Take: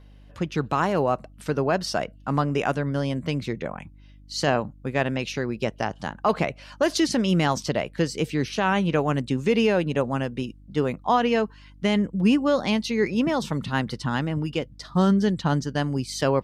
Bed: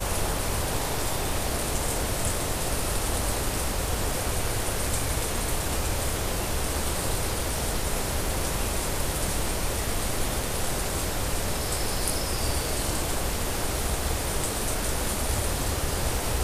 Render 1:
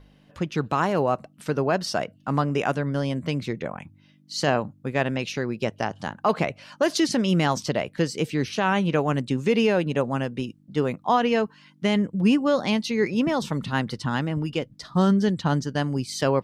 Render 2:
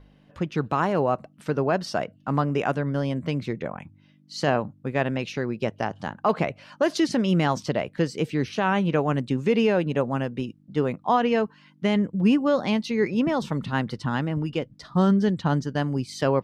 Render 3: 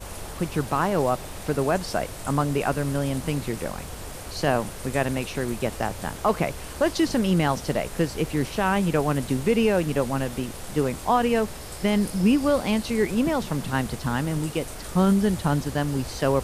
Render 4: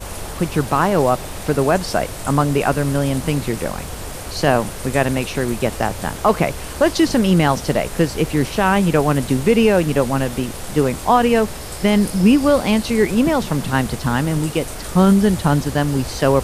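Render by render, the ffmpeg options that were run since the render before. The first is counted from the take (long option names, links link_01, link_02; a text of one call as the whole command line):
ffmpeg -i in.wav -af "bandreject=frequency=50:width_type=h:width=4,bandreject=frequency=100:width_type=h:width=4" out.wav
ffmpeg -i in.wav -af "highshelf=frequency=3900:gain=-8.5" out.wav
ffmpeg -i in.wav -i bed.wav -filter_complex "[1:a]volume=-9.5dB[link_01];[0:a][link_01]amix=inputs=2:normalize=0" out.wav
ffmpeg -i in.wav -af "volume=7dB" out.wav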